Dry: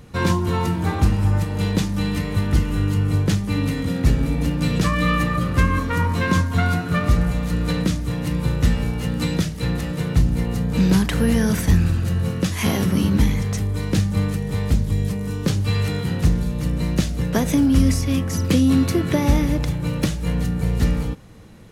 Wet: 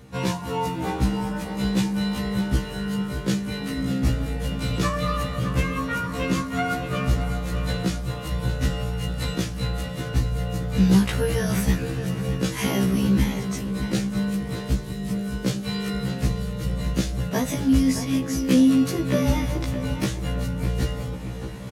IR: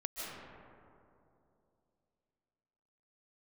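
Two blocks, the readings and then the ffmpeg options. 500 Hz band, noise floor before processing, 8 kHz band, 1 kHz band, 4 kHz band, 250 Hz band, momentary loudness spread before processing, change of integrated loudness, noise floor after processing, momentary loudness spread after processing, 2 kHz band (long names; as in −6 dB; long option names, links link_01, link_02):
−1.5 dB, −27 dBFS, −2.0 dB, −2.5 dB, −1.5 dB, −2.5 dB, 5 LU, −4.0 dB, −32 dBFS, 8 LU, −4.0 dB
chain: -filter_complex "[0:a]highpass=frequency=88:poles=1,areverse,acompressor=mode=upward:threshold=-25dB:ratio=2.5,areverse,asplit=2[link_01][link_02];[link_02]adelay=617,lowpass=frequency=3200:poles=1,volume=-9.5dB,asplit=2[link_03][link_04];[link_04]adelay=617,lowpass=frequency=3200:poles=1,volume=0.51,asplit=2[link_05][link_06];[link_06]adelay=617,lowpass=frequency=3200:poles=1,volume=0.51,asplit=2[link_07][link_08];[link_08]adelay=617,lowpass=frequency=3200:poles=1,volume=0.51,asplit=2[link_09][link_10];[link_10]adelay=617,lowpass=frequency=3200:poles=1,volume=0.51,asplit=2[link_11][link_12];[link_12]adelay=617,lowpass=frequency=3200:poles=1,volume=0.51[link_13];[link_01][link_03][link_05][link_07][link_09][link_11][link_13]amix=inputs=7:normalize=0,afftfilt=real='re*1.73*eq(mod(b,3),0)':imag='im*1.73*eq(mod(b,3),0)':win_size=2048:overlap=0.75"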